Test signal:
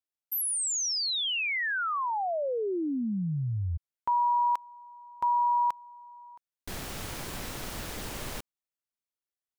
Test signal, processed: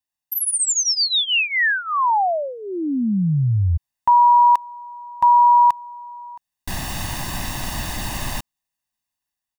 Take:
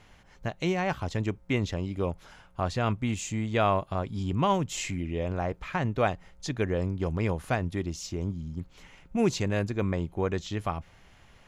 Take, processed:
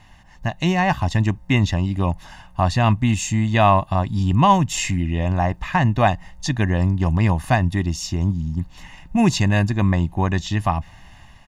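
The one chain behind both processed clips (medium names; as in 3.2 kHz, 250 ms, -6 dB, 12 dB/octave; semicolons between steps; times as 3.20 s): comb 1.1 ms, depth 78%; level rider gain up to 4.5 dB; trim +3.5 dB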